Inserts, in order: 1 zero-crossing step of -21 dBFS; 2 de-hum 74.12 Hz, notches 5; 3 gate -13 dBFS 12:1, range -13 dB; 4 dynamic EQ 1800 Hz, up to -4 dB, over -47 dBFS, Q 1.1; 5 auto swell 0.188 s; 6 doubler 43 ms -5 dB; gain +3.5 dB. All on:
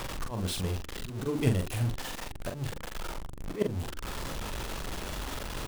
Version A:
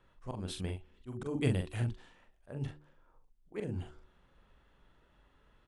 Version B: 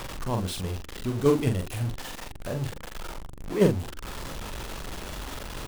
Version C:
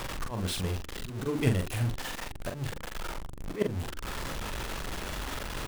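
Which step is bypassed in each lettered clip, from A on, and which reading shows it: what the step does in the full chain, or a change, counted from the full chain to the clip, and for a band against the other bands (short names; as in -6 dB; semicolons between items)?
1, distortion -4 dB; 5, 500 Hz band +6.0 dB; 4, 2 kHz band +2.5 dB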